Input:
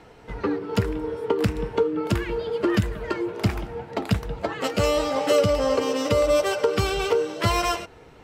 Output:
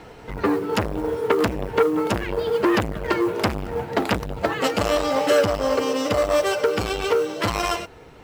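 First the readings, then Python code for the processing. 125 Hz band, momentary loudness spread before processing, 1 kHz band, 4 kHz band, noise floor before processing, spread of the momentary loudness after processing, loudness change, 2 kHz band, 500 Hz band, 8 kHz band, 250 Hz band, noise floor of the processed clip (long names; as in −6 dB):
−3.5 dB, 10 LU, +3.5 dB, +1.5 dB, −49 dBFS, 6 LU, +2.0 dB, +4.0 dB, +2.0 dB, +1.0 dB, +2.5 dB, −44 dBFS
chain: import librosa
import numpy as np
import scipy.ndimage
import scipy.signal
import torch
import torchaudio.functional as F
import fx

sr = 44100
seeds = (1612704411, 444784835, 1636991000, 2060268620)

y = fx.rider(x, sr, range_db=10, speed_s=2.0)
y = fx.mod_noise(y, sr, seeds[0], snr_db=30)
y = fx.transformer_sat(y, sr, knee_hz=1300.0)
y = y * librosa.db_to_amplitude(4.5)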